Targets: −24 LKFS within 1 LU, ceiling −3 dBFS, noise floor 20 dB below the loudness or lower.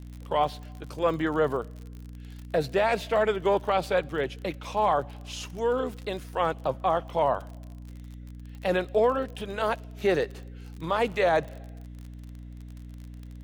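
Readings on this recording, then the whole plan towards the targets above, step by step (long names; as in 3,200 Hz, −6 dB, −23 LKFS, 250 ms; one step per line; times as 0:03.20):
crackle rate 44 per second; mains hum 60 Hz; hum harmonics up to 300 Hz; level of the hum −39 dBFS; integrated loudness −27.5 LKFS; sample peak −12.5 dBFS; target loudness −24.0 LKFS
→ click removal
hum removal 60 Hz, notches 5
level +3.5 dB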